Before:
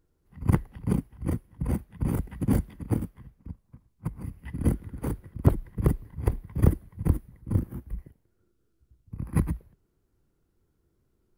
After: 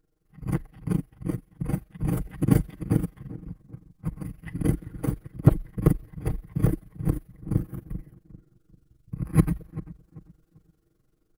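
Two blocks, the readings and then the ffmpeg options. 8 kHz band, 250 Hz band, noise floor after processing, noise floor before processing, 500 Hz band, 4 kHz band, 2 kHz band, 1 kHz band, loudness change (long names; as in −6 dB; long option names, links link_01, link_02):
+2.0 dB, +2.5 dB, −69 dBFS, −72 dBFS, +1.5 dB, can't be measured, +1.5 dB, 0.0 dB, +1.5 dB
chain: -filter_complex "[0:a]bandreject=frequency=940:width=9.4,aecho=1:1:6.4:0.79,asplit=2[link_01][link_02];[link_02]adelay=394,lowpass=frequency=1400:poles=1,volume=-16.5dB,asplit=2[link_03][link_04];[link_04]adelay=394,lowpass=frequency=1400:poles=1,volume=0.31,asplit=2[link_05][link_06];[link_06]adelay=394,lowpass=frequency=1400:poles=1,volume=0.31[link_07];[link_01][link_03][link_05][link_07]amix=inputs=4:normalize=0,dynaudnorm=framelen=300:gausssize=13:maxgain=11.5dB,tremolo=f=23:d=0.71"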